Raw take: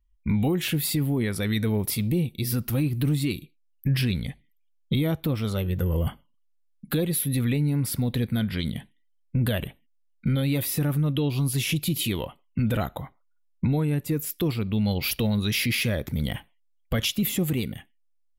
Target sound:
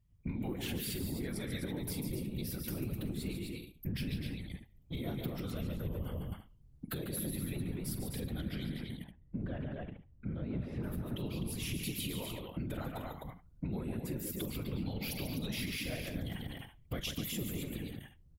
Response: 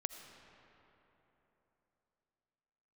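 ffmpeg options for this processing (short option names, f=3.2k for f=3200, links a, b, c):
-filter_complex "[0:a]alimiter=limit=-19dB:level=0:latency=1,asettb=1/sr,asplit=3[a][b][c];[a]atrim=end=8.784[d];[b]atrim=start=8.78:end=10.84,asetpts=PTS-STARTPTS,afade=t=in:d=0.004:c=qsin,afade=t=out:st=2.056:d=0.004:c=qsin,lowpass=1.5k[e];[c]atrim=start=10.836[f];[d][e]acrossfade=d=0.004:c1=hsin:c2=qsin[g];[g][f]acrossfade=d=0.004:c1=qsin:c2=hsin,aecho=1:1:43|143|254|327:0.237|0.473|0.447|0.112,asoftclip=type=tanh:threshold=-15.5dB,acompressor=threshold=-40dB:ratio=3,afftfilt=real='hypot(re,im)*cos(2*PI*random(0))':imag='hypot(re,im)*sin(2*PI*random(1))':win_size=512:overlap=0.75,volume=6dB"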